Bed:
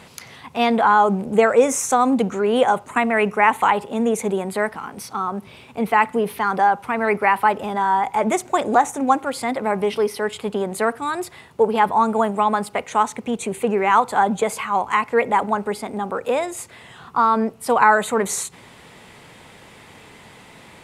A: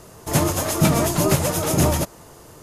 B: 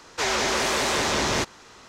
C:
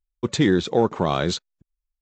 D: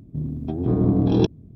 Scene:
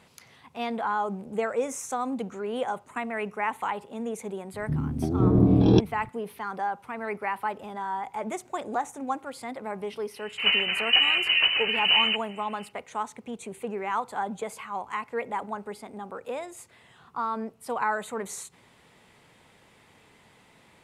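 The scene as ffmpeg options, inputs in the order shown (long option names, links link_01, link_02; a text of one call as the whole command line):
ffmpeg -i bed.wav -i cue0.wav -i cue1.wav -i cue2.wav -i cue3.wav -filter_complex "[0:a]volume=-13dB[link_01];[1:a]lowpass=frequency=2600:width_type=q:width=0.5098,lowpass=frequency=2600:width_type=q:width=0.6013,lowpass=frequency=2600:width_type=q:width=0.9,lowpass=frequency=2600:width_type=q:width=2.563,afreqshift=-3100[link_02];[4:a]atrim=end=1.55,asetpts=PTS-STARTPTS,afade=type=in:duration=0.004:curve=hsin,afade=type=out:start_time=1.546:duration=0.004:curve=hsin,adelay=4540[link_03];[link_02]atrim=end=2.62,asetpts=PTS-STARTPTS,volume=-3.5dB,afade=type=in:duration=0.1,afade=type=out:start_time=2.52:duration=0.1,adelay=10110[link_04];[link_01][link_03][link_04]amix=inputs=3:normalize=0" out.wav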